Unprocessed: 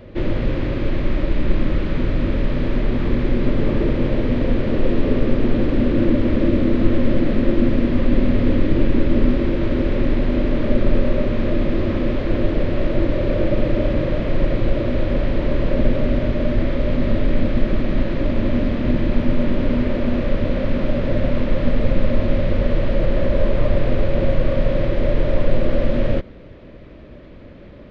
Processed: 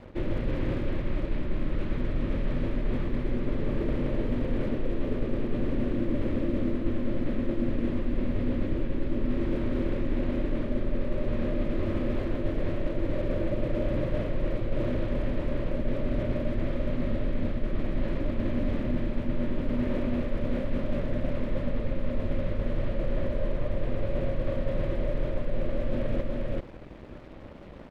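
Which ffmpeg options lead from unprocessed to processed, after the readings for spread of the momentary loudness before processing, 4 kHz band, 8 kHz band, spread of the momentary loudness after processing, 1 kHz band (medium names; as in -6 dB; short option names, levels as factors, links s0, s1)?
4 LU, -12.5 dB, no reading, 3 LU, -10.0 dB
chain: -af "lowpass=f=3700:p=1,aeval=exprs='sgn(val(0))*max(abs(val(0))-0.00631,0)':c=same,aecho=1:1:397:0.376,areverse,acompressor=threshold=0.0562:ratio=4,areverse"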